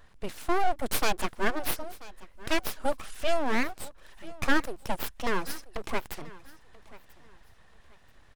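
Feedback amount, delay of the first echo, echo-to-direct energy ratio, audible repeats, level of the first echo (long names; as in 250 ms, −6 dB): 28%, 985 ms, −19.5 dB, 2, −20.0 dB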